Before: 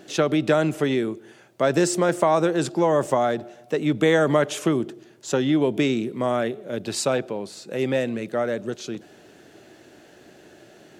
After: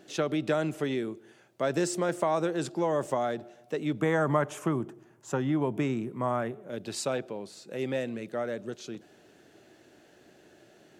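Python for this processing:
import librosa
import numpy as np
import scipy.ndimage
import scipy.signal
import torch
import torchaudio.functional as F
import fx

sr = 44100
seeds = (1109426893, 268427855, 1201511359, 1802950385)

y = fx.graphic_eq(x, sr, hz=(125, 500, 1000, 4000), db=(6, -3, 8, -11), at=(4.0, 6.7))
y = y * 10.0 ** (-8.0 / 20.0)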